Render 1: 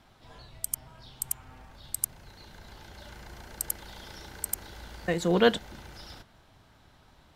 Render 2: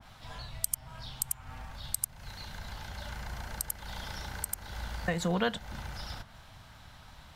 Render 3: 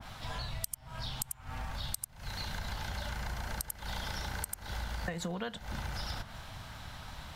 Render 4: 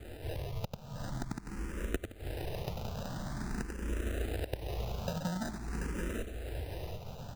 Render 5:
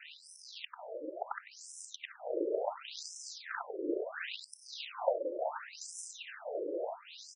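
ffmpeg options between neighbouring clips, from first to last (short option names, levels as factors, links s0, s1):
-af "equalizer=f=360:t=o:w=1.1:g=-13,acompressor=threshold=0.0158:ratio=3,adynamicequalizer=threshold=0.00126:dfrequency=1700:dqfactor=0.7:tfrequency=1700:tqfactor=0.7:attack=5:release=100:ratio=0.375:range=2.5:mode=cutabove:tftype=highshelf,volume=2.51"
-af "acompressor=threshold=0.01:ratio=12,volume=2.11"
-filter_complex "[0:a]acrusher=samples=40:mix=1:aa=0.000001,aecho=1:1:735|1470|2205|2940|3675:0.562|0.225|0.09|0.036|0.0144,asplit=2[s0][s1];[s1]afreqshift=0.47[s2];[s0][s2]amix=inputs=2:normalize=1,volume=1.41"
-filter_complex "[0:a]asplit=2[s0][s1];[s1]adelay=310,lowpass=f=880:p=1,volume=0.282,asplit=2[s2][s3];[s3]adelay=310,lowpass=f=880:p=1,volume=0.55,asplit=2[s4][s5];[s5]adelay=310,lowpass=f=880:p=1,volume=0.55,asplit=2[s6][s7];[s7]adelay=310,lowpass=f=880:p=1,volume=0.55,asplit=2[s8][s9];[s9]adelay=310,lowpass=f=880:p=1,volume=0.55,asplit=2[s10][s11];[s11]adelay=310,lowpass=f=880:p=1,volume=0.55[s12];[s2][s4][s6][s8][s10][s12]amix=inputs=6:normalize=0[s13];[s0][s13]amix=inputs=2:normalize=0,afftfilt=real='re*between(b*sr/1024,410*pow(7400/410,0.5+0.5*sin(2*PI*0.71*pts/sr))/1.41,410*pow(7400/410,0.5+0.5*sin(2*PI*0.71*pts/sr))*1.41)':imag='im*between(b*sr/1024,410*pow(7400/410,0.5+0.5*sin(2*PI*0.71*pts/sr))/1.41,410*pow(7400/410,0.5+0.5*sin(2*PI*0.71*pts/sr))*1.41)':win_size=1024:overlap=0.75,volume=3.55"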